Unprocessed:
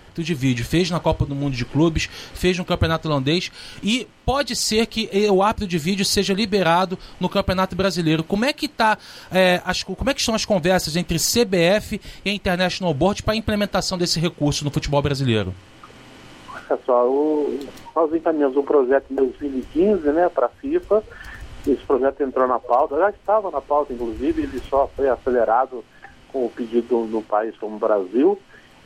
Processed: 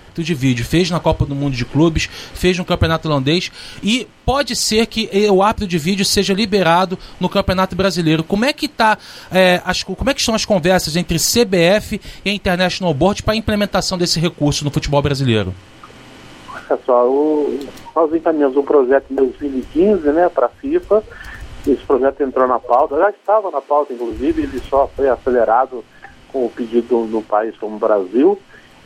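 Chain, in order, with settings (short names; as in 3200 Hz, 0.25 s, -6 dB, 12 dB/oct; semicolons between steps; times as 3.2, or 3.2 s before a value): 23.03–24.11 HPF 270 Hz 24 dB/oct; gain +4.5 dB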